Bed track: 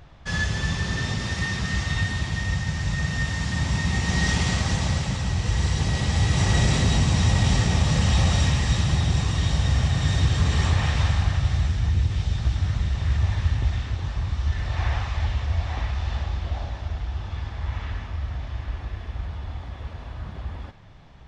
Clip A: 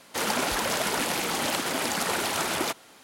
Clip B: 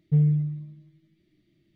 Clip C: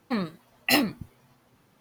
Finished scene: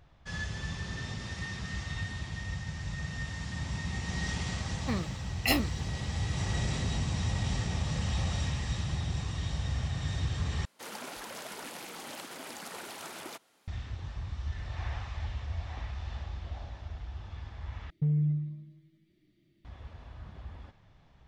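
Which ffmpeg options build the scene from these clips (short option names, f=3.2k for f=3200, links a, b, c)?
-filter_complex "[0:a]volume=-11.5dB[a];[1:a]equalizer=f=62:t=o:w=0.67:g=-13.5[b];[2:a]acompressor=threshold=-22dB:ratio=6:attack=3.2:release=140:knee=1:detection=peak[c];[a]asplit=3[d][e][f];[d]atrim=end=10.654[g];[b]atrim=end=3.03,asetpts=PTS-STARTPTS,volume=-15.5dB[h];[e]atrim=start=13.676:end=17.904[i];[c]atrim=end=1.75,asetpts=PTS-STARTPTS,volume=-2dB[j];[f]atrim=start=19.646[k];[3:a]atrim=end=1.8,asetpts=PTS-STARTPTS,volume=-5.5dB,afade=t=in:d=0.004:c=hsin,afade=t=out:st=1.796:d=0.004:c=hsin,adelay=210357S[l];[g][h]acrossfade=d=0.004:c1=hsin:c2=hsin[m];[m][i]acrossfade=d=0.004:c1=hsin:c2=hsin[n];[n][j]acrossfade=d=0.004:c1=hsin:c2=hsin[o];[o][k]acrossfade=d=0.004:c1=hsin:c2=hsin[p];[p][l]amix=inputs=2:normalize=0"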